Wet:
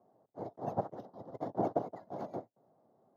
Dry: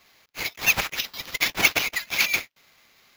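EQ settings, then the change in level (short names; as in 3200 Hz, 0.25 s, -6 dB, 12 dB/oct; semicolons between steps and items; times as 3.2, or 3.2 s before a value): elliptic band-pass 110–720 Hz, stop band 50 dB; tilt +1.5 dB/oct; +3.0 dB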